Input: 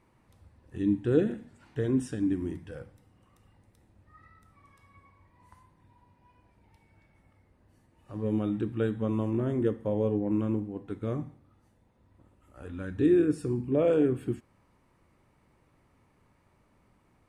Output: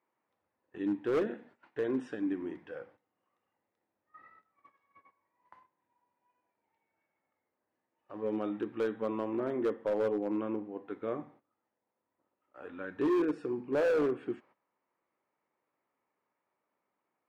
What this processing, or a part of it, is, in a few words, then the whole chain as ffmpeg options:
walkie-talkie: -af "highpass=430,lowpass=2400,asoftclip=type=hard:threshold=0.0422,agate=range=0.178:threshold=0.001:ratio=16:detection=peak,volume=1.33"

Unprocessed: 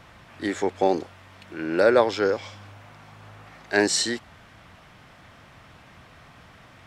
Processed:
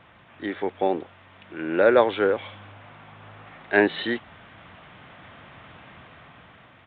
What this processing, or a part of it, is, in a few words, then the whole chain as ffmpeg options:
Bluetooth headset: -af "highpass=f=110:p=1,dynaudnorm=f=650:g=5:m=3.76,aresample=8000,aresample=44100,volume=0.75" -ar 16000 -c:a sbc -b:a 64k

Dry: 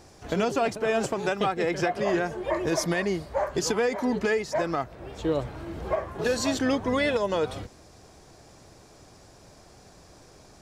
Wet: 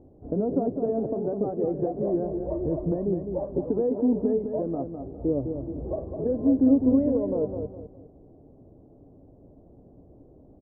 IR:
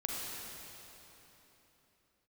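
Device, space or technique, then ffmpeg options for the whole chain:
under water: -filter_complex "[0:a]asettb=1/sr,asplit=3[s0][s1][s2];[s0]atrim=end=2.024[s3];[s1]atrim=start=2.02:end=2.92,asetpts=PTS-STARTPTS,afade=t=in:d=0.004:c=qsin,afade=t=out:st=0.896:d=0.004:c=qsin,asubboost=boost=10:cutoff=130[s4];[s2]atrim=start=2.916[s5];[s3][s4]acrossfade=d=0.004:c1=hsin:c2=qsin[s6];[s6][s5]acrossfade=d=0.004:c1=qsin:c2=hsin,lowpass=f=580:w=0.5412,lowpass=f=580:w=1.3066,equalizer=f=270:t=o:w=0.25:g=9,asplit=2[s7][s8];[s8]adelay=206,lowpass=f=4700:p=1,volume=0.447,asplit=2[s9][s10];[s10]adelay=206,lowpass=f=4700:p=1,volume=0.31,asplit=2[s11][s12];[s12]adelay=206,lowpass=f=4700:p=1,volume=0.31,asplit=2[s13][s14];[s14]adelay=206,lowpass=f=4700:p=1,volume=0.31[s15];[s7][s9][s11][s13][s15]amix=inputs=5:normalize=0"

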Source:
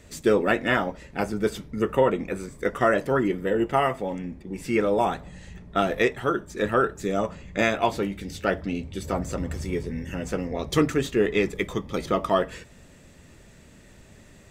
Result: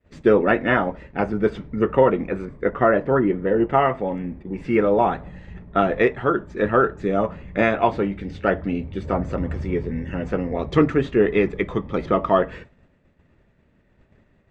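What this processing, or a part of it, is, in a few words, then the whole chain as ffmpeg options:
hearing-loss simulation: -filter_complex "[0:a]lowpass=2100,agate=range=0.0224:threshold=0.00891:ratio=3:detection=peak,asettb=1/sr,asplit=3[s0][s1][s2];[s0]atrim=end=2.454[s3];[s1]atrim=start=2.45:end=3.7,asetpts=PTS-STARTPTS,afade=t=in:d=0.004:c=qsin,afade=t=out:st=1.246:d=0.004:c=qsin,aemphasis=mode=reproduction:type=75kf[s4];[s2]atrim=start=3.696[s5];[s3][s4]acrossfade=d=0.004:c1=hsin:c2=qsin[s6];[s6][s5]acrossfade=d=0.004:c1=qsin:c2=hsin,volume=1.68"

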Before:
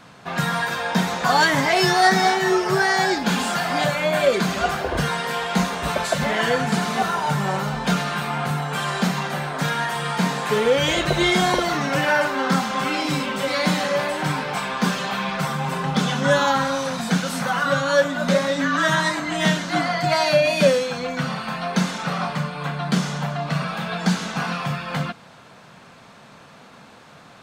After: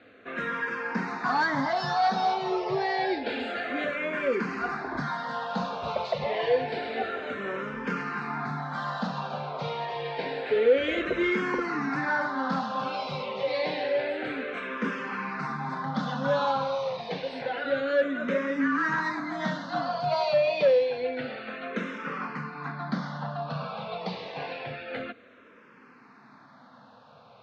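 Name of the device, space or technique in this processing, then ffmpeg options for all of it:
barber-pole phaser into a guitar amplifier: -filter_complex "[0:a]asplit=2[s0][s1];[s1]afreqshift=-0.28[s2];[s0][s2]amix=inputs=2:normalize=1,asoftclip=type=tanh:threshold=0.237,highpass=95,equalizer=f=170:t=q:w=4:g=-10,equalizer=f=260:t=q:w=4:g=5,equalizer=f=480:t=q:w=4:g=6,equalizer=f=3200:t=q:w=4:g=-6,lowpass=f=4100:w=0.5412,lowpass=f=4100:w=1.3066,asettb=1/sr,asplit=3[s3][s4][s5];[s3]atrim=end=22.724[s6];[s4]atrim=start=22.72:end=24.26,asetpts=PTS-STARTPTS,afade=t=in:d=0.004:c=qsin,afade=t=out:st=1.536:d=0.004:c=qsin,lowpass=f=5800:w=0.5412,lowpass=f=5800:w=1.3066[s7];[s5]atrim=start=24.256[s8];[s6][s7]acrossfade=d=0.004:c1=hsin:c2=qsin[s9];[s9][s8]acrossfade=d=0.004:c1=qsin:c2=hsin,volume=0.596"

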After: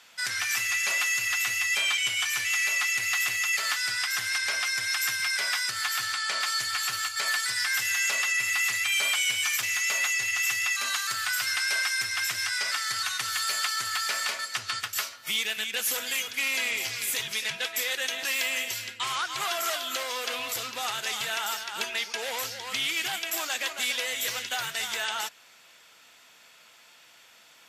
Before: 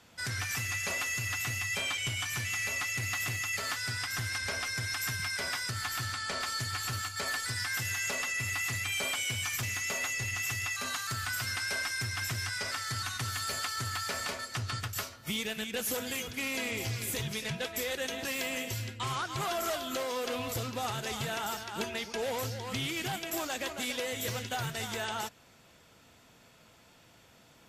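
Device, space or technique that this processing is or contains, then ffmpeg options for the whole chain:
filter by subtraction: -filter_complex "[0:a]asplit=2[s0][s1];[s1]lowpass=2200,volume=-1[s2];[s0][s2]amix=inputs=2:normalize=0,volume=2"

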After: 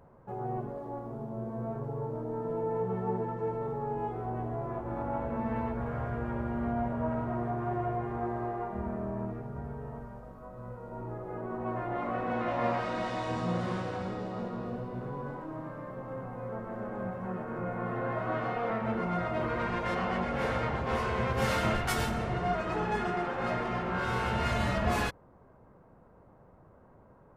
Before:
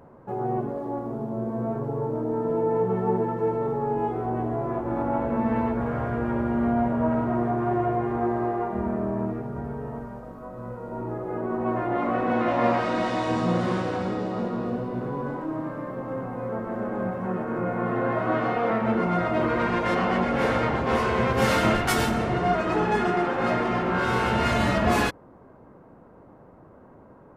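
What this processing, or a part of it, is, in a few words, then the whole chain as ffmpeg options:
low shelf boost with a cut just above: -filter_complex "[0:a]lowshelf=f=92:g=7,equalizer=f=290:t=o:w=0.83:g=-5.5,asettb=1/sr,asplit=3[s0][s1][s2];[s0]atrim=end=3.034[s3];[s1]atrim=start=3.03:end=3.53,asetpts=PTS-STARTPTS,afade=t=in:d=0.004:c=qsin,afade=t=out:st=0.496:d=0.004:c=qsin,lowpass=f=10000:w=0.5412,lowpass=f=10000:w=1.3066[s4];[s2]atrim=start=3.526[s5];[s3][s4]acrossfade=d=0.004:c1=hsin:c2=qsin[s6];[s6][s5]acrossfade=d=0.004:c1=qsin:c2=hsin,volume=0.447"

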